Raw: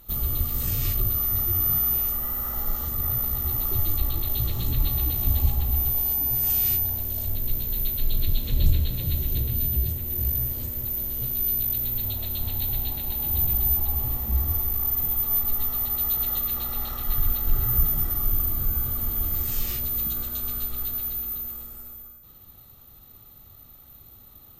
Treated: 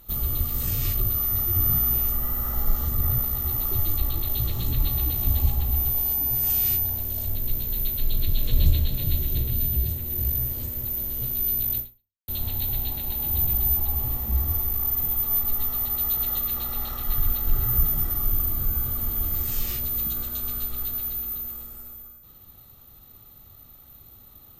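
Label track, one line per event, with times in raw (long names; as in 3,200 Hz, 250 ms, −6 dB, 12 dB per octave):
1.560000	3.230000	low-shelf EQ 240 Hz +6.5 dB
7.990000	8.400000	delay throw 390 ms, feedback 55%, level −3 dB
11.790000	12.280000	fade out exponential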